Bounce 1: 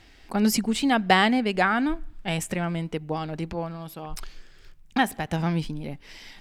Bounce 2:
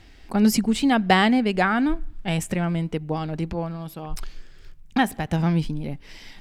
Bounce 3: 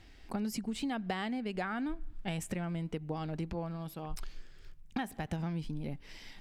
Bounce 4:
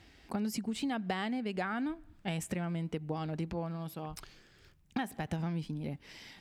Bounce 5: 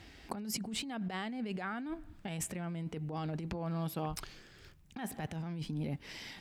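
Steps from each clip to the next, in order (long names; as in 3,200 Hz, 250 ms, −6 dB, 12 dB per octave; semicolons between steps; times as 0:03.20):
low-shelf EQ 310 Hz +6 dB
downward compressor 12 to 1, threshold −25 dBFS, peak gain reduction 13.5 dB; level −7 dB
high-pass filter 65 Hz 12 dB per octave; level +1 dB
compressor whose output falls as the input rises −39 dBFS, ratio −1; level +1 dB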